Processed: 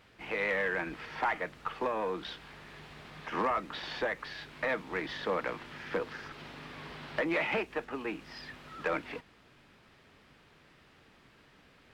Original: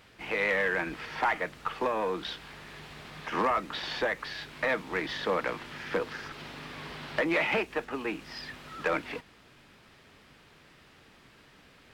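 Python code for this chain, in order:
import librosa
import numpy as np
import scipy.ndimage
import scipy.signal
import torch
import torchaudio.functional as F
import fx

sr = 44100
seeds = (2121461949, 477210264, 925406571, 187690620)

y = fx.high_shelf(x, sr, hz=4400.0, db=-5.5)
y = y * librosa.db_to_amplitude(-3.0)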